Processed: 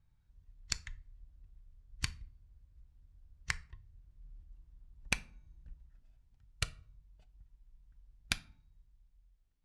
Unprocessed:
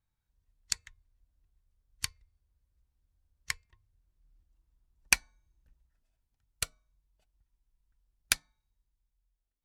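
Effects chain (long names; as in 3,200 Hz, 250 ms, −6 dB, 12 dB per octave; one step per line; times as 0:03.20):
low-pass filter 7,300 Hz 12 dB per octave
bass and treble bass +10 dB, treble −4 dB
downward compressor 6 to 1, threshold −34 dBFS, peak gain reduction 14.5 dB
rectangular room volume 420 cubic metres, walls furnished, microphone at 0.35 metres
level +4 dB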